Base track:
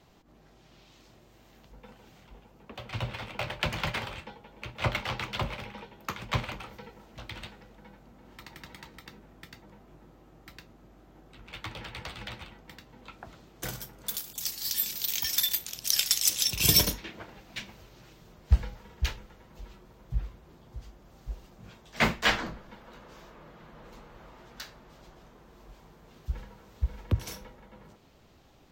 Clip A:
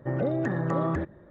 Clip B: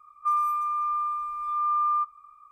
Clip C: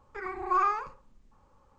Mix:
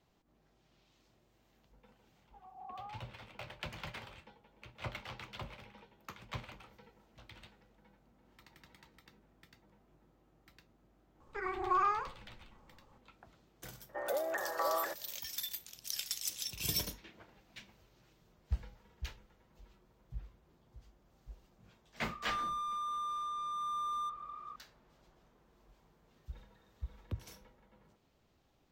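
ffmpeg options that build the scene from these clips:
-filter_complex "[3:a]asplit=2[s0][s1];[1:a]asplit=2[s2][s3];[0:a]volume=0.211[s4];[s0]asuperpass=centerf=760:order=4:qfactor=3.3[s5];[s1]alimiter=limit=0.0891:level=0:latency=1:release=173[s6];[s2]highpass=f=580:w=0.5412,highpass=f=580:w=1.3066[s7];[2:a]asplit=2[s8][s9];[s9]highpass=f=720:p=1,volume=25.1,asoftclip=type=tanh:threshold=0.119[s10];[s8][s10]amix=inputs=2:normalize=0,lowpass=f=1500:p=1,volume=0.501[s11];[s3]bandpass=f=3800:t=q:w=18:csg=0[s12];[s5]atrim=end=1.78,asetpts=PTS-STARTPTS,volume=0.335,afade=t=in:d=0.004:c=hsin,afade=t=out:st=1.776:d=0.004:c=hsin,adelay=2180[s13];[s6]atrim=end=1.78,asetpts=PTS-STARTPTS,volume=0.841,afade=t=in:d=0.004:c=hsin,afade=t=out:st=1.776:d=0.004:c=hsin,adelay=11200[s14];[s7]atrim=end=1.3,asetpts=PTS-STARTPTS,volume=0.841,afade=t=in:d=0.004:c=hsin,afade=t=out:st=1.296:d=0.004:c=hsin,adelay=13890[s15];[s11]atrim=end=2.51,asetpts=PTS-STARTPTS,volume=0.224,afade=t=in:d=0.004:c=hsin,afade=t=out:st=2.506:d=0.004:c=hsin,adelay=22050[s16];[s12]atrim=end=1.3,asetpts=PTS-STARTPTS,volume=0.398,afade=t=in:d=0.004:c=hsin,afade=t=out:st=1.296:d=0.004:c=hsin,adelay=26100[s17];[s4][s13][s14][s15][s16][s17]amix=inputs=6:normalize=0"

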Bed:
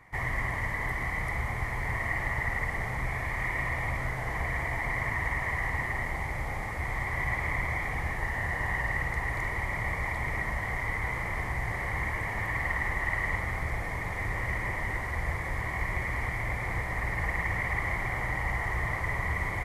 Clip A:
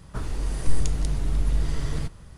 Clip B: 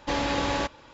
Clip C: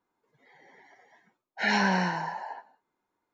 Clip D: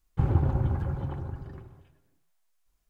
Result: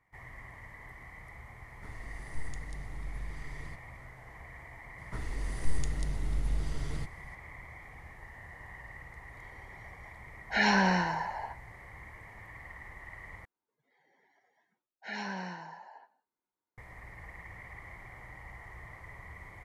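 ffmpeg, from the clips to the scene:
-filter_complex "[1:a]asplit=2[s0][s1];[3:a]asplit=2[s2][s3];[0:a]volume=0.133,asplit=2[s4][s5];[s4]atrim=end=13.454[s6];[s3]atrim=end=3.33,asetpts=PTS-STARTPTS,volume=0.211[s7];[s5]atrim=start=16.776[s8];[s0]atrim=end=2.37,asetpts=PTS-STARTPTS,volume=0.141,afade=t=in:d=0.004:c=hsin,afade=t=out:st=2.366:d=0.004:c=hsin,adelay=1680[s9];[s1]atrim=end=2.37,asetpts=PTS-STARTPTS,volume=0.398,afade=t=in:d=0.004:c=hsin,afade=t=out:st=2.366:d=0.004:c=hsin,adelay=4980[s10];[s2]atrim=end=3.33,asetpts=PTS-STARTPTS,volume=0.944,afade=t=in:d=0.004:c=hsin,afade=t=out:st=3.326:d=0.004:c=hsin,adelay=8930[s11];[s6][s7]acrossfade=d=0.004:c1=hsin:c2=hsin[s12];[s12][s8]acrossfade=d=0.004:c1=hsin:c2=hsin[s13];[s13][s9][s10][s11]amix=inputs=4:normalize=0"

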